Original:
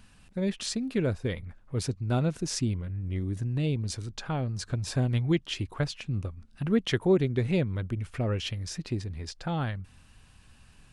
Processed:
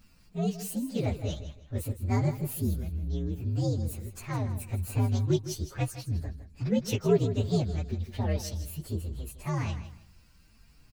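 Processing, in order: inharmonic rescaling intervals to 124%; feedback echo 0.16 s, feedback 25%, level -12.5 dB; gain +1 dB

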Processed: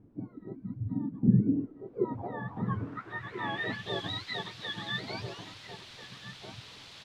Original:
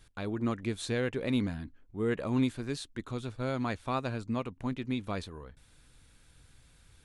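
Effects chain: spectrum mirrored in octaves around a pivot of 670 Hz; 1.23–2.05 resonant low shelf 610 Hz +12.5 dB, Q 3; in parallel at -6.5 dB: requantised 6-bit, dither triangular; on the sum: outdoor echo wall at 230 m, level -7 dB; low-pass sweep 280 Hz -> 3800 Hz, 1.51–3.95; gain -5.5 dB

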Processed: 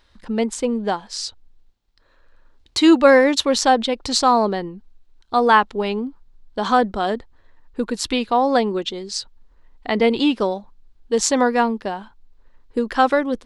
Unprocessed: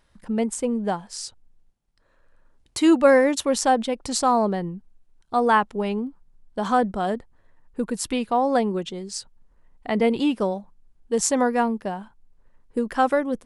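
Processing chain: fifteen-band EQ 160 Hz -11 dB, 630 Hz -3 dB, 4000 Hz +7 dB, 10000 Hz -11 dB; gain +5.5 dB

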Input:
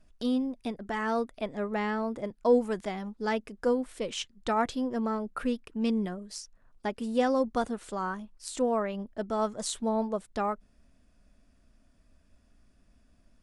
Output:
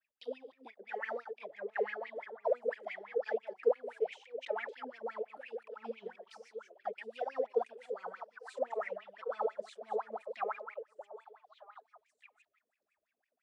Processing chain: reverse delay 0.131 s, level -9 dB; de-esser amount 75%; sample leveller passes 1; tilt shelf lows -6.5 dB, about 730 Hz; delay with a stepping band-pass 0.616 s, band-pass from 440 Hz, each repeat 1.4 oct, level -6 dB; wah 5.9 Hz 430–2500 Hz, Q 15; bell 1200 Hz -12 dB 0.9 oct, from 8.16 s -6 dB; tape flanging out of phase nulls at 2 Hz, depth 4.4 ms; gain +7.5 dB

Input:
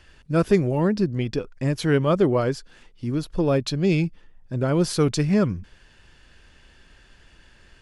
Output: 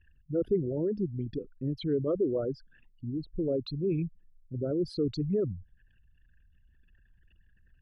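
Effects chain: formant sharpening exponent 3; resonant high shelf 4500 Hz -11.5 dB, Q 1.5; gain -9 dB

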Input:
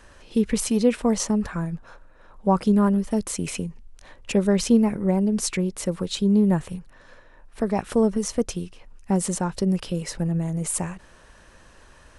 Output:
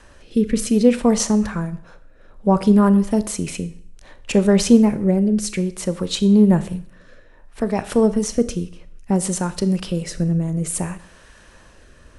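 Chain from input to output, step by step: rotary speaker horn 0.6 Hz; Schroeder reverb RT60 0.56 s, combs from 26 ms, DRR 13 dB; gain +5.5 dB

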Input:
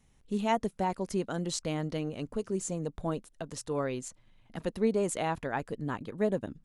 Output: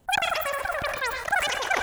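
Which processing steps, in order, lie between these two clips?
diffused feedback echo 0.478 s, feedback 48%, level -11 dB; wide varispeed 3.64×; sustainer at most 50 dB/s; gain +4.5 dB

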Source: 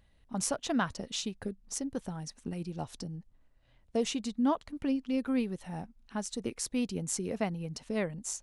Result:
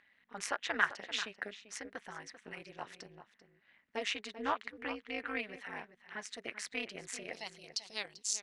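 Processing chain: AM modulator 210 Hz, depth 85%; band-pass 1900 Hz, Q 2.9, from 7.33 s 4500 Hz; outdoor echo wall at 67 m, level -12 dB; gain +15.5 dB

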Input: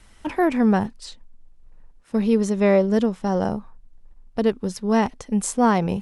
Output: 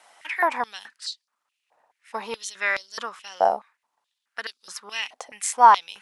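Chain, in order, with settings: stepped high-pass 4.7 Hz 720–4500 Hz

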